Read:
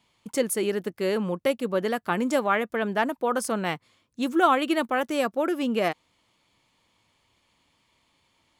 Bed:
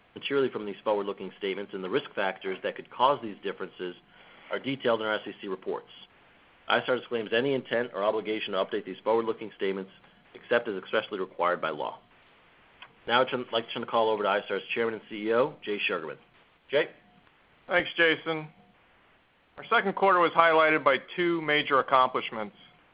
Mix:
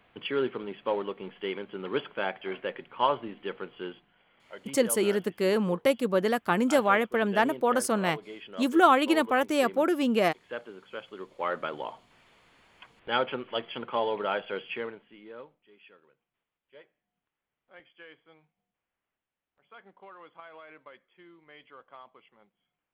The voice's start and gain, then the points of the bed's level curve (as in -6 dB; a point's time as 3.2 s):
4.40 s, +0.5 dB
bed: 3.95 s -2 dB
4.19 s -12.5 dB
10.98 s -12.5 dB
11.53 s -3.5 dB
14.67 s -3.5 dB
15.67 s -27.5 dB